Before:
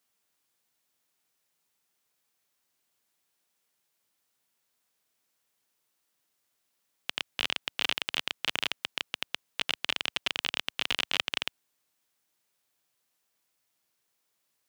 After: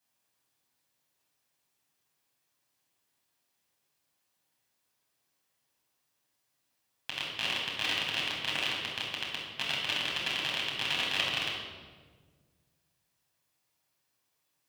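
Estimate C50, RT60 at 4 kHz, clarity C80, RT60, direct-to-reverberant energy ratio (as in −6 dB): 1.0 dB, 1.1 s, 3.5 dB, 1.5 s, −4.0 dB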